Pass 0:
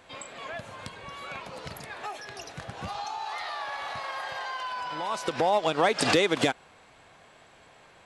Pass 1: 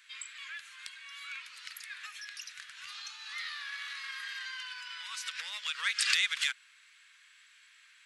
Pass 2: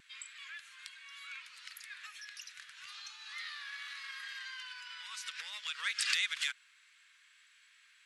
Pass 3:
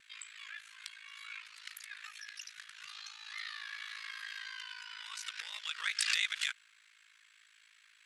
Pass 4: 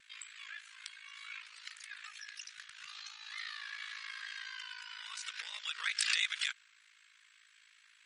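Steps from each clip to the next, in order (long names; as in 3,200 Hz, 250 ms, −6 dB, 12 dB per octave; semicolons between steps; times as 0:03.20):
inverse Chebyshev high-pass filter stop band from 800 Hz, stop band 40 dB
pitch vibrato 0.54 Hz 9.8 cents; level −4 dB
ring modulation 27 Hz; level +3 dB
MP3 40 kbit/s 48,000 Hz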